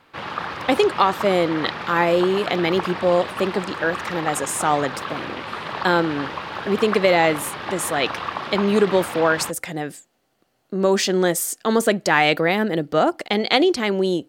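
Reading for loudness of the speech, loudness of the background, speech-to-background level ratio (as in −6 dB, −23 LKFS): −20.5 LKFS, −29.5 LKFS, 9.0 dB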